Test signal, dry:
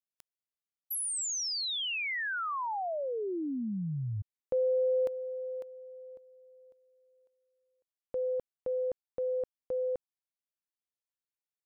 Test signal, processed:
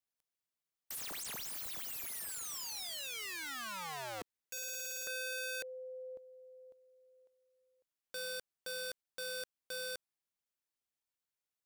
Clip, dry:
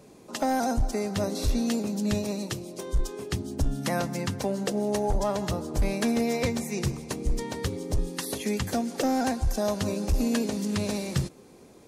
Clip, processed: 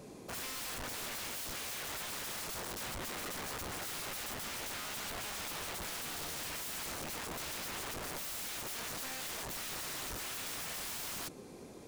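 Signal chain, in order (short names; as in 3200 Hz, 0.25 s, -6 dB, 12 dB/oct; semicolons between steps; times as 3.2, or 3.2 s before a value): limiter -24 dBFS; wrapped overs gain 37.5 dB; gain +1 dB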